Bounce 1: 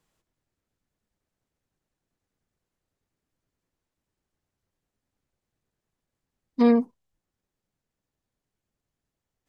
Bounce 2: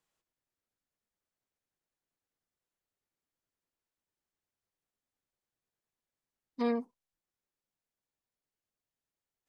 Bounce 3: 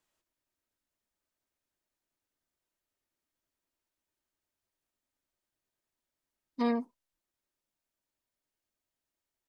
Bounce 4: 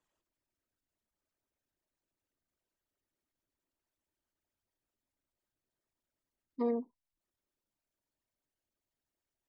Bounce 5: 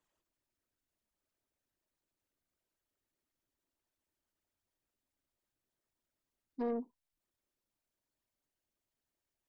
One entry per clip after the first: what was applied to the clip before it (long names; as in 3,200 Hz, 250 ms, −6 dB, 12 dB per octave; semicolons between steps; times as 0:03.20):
low-shelf EQ 300 Hz −11 dB; level −7 dB
comb filter 3.2 ms, depth 32%; level +2 dB
spectral envelope exaggerated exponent 2; level −3 dB
soft clipping −30.5 dBFS, distortion −14 dB